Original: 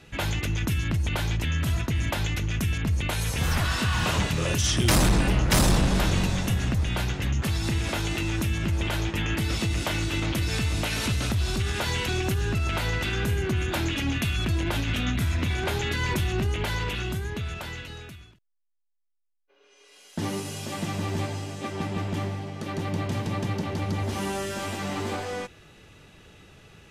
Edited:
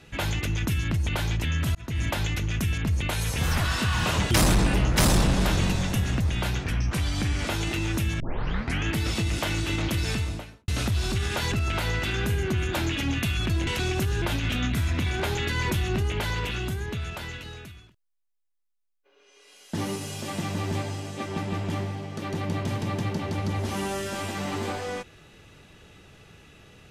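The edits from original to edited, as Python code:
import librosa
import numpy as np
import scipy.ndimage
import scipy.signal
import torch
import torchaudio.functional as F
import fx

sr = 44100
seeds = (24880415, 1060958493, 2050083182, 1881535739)

y = fx.studio_fade_out(x, sr, start_s=10.49, length_s=0.63)
y = fx.edit(y, sr, fx.fade_in_span(start_s=1.75, length_s=0.27),
    fx.cut(start_s=4.31, length_s=0.54),
    fx.speed_span(start_s=7.18, length_s=0.73, speed=0.88),
    fx.tape_start(start_s=8.64, length_s=0.64),
    fx.move(start_s=11.96, length_s=0.55, to_s=14.66), tone=tone)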